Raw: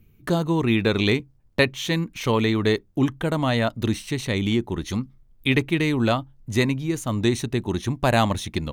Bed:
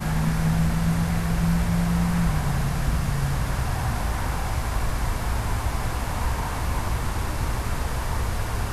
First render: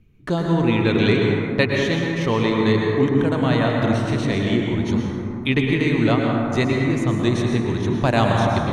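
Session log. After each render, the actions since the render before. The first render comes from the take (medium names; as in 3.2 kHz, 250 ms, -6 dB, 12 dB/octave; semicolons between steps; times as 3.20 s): distance through air 67 m; plate-style reverb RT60 3 s, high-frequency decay 0.3×, pre-delay 95 ms, DRR -1 dB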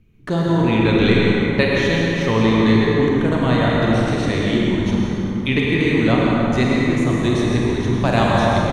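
frequency-shifting echo 166 ms, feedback 57%, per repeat -56 Hz, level -13.5 dB; Schroeder reverb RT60 1.6 s, combs from 32 ms, DRR 1 dB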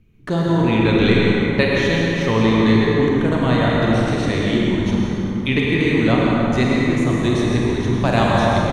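no audible change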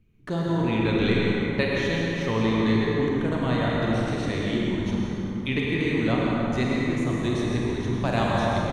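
trim -7.5 dB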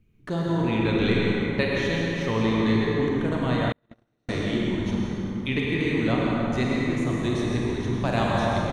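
3.72–4.29 s: gate -19 dBFS, range -47 dB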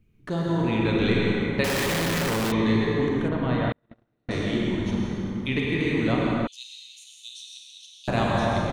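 1.64–2.52 s: Schmitt trigger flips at -41.5 dBFS; 3.28–4.31 s: distance through air 190 m; 6.47–8.08 s: steep high-pass 2.9 kHz 72 dB/octave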